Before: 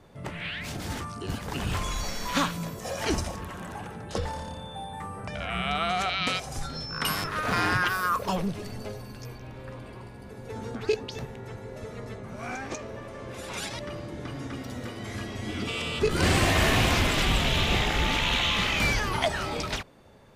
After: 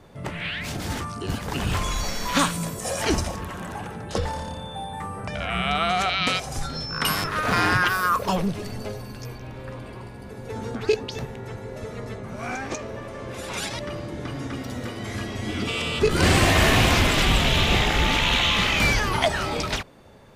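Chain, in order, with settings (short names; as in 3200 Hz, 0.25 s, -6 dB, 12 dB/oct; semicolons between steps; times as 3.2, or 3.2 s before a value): 2.39–3.02 bell 8900 Hz +12 dB 0.59 oct; gain +4.5 dB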